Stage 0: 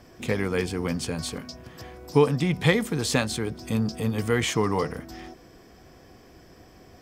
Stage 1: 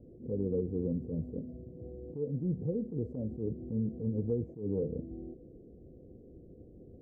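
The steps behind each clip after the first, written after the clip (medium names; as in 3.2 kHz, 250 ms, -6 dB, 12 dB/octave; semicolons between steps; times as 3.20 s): elliptic low-pass 510 Hz, stop band 60 dB; compression 5:1, threshold -28 dBFS, peak gain reduction 13 dB; attacks held to a fixed rise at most 140 dB/s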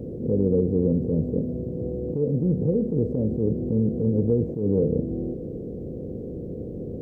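spectral levelling over time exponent 0.6; trim +8.5 dB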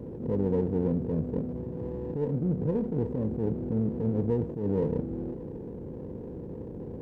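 sliding maximum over 9 samples; trim -5.5 dB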